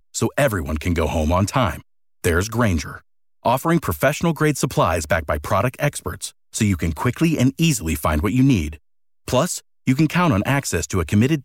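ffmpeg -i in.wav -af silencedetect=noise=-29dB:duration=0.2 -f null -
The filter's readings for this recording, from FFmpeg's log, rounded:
silence_start: 1.79
silence_end: 2.24 | silence_duration: 0.45
silence_start: 2.96
silence_end: 3.45 | silence_duration: 0.49
silence_start: 6.28
silence_end: 6.55 | silence_duration: 0.26
silence_start: 8.75
silence_end: 9.28 | silence_duration: 0.53
silence_start: 9.59
silence_end: 9.87 | silence_duration: 0.29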